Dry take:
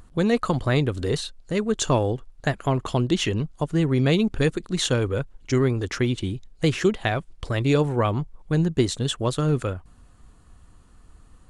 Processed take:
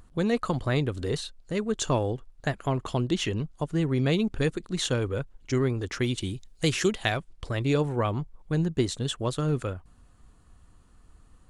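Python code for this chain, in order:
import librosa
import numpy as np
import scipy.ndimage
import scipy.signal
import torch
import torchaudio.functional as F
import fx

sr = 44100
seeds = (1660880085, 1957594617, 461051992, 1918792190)

y = fx.high_shelf(x, sr, hz=fx.line((6.0, 4000.0), (7.16, 2700.0)), db=11.0, at=(6.0, 7.16), fade=0.02)
y = y * librosa.db_to_amplitude(-4.5)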